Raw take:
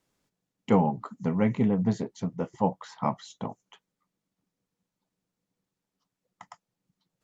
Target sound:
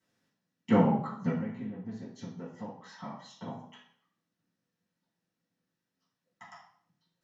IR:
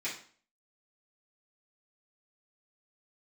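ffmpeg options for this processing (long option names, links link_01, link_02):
-filter_complex "[0:a]asettb=1/sr,asplit=3[link_01][link_02][link_03];[link_01]atrim=end=1.304[link_04];[link_02]atrim=start=1.3:end=3.47,asetpts=PTS-STARTPTS,afade=type=in:duration=0.004:curve=qsin,afade=type=out:start_time=2.166:duration=0.004:curve=qsin,acompressor=threshold=-37dB:ratio=10[link_05];[link_03]atrim=start=3.466[link_06];[link_04][link_05]acrossfade=duration=0.004:curve1=hsin:curve2=qsin[link_07];[link_07][link_06]acrossfade=duration=0.004:curve1=qsin:curve2=hsin[link_08];[1:a]atrim=start_sample=2205,asetrate=34398,aresample=44100[link_09];[link_08][link_09]afir=irnorm=-1:irlink=0,volume=-4.5dB"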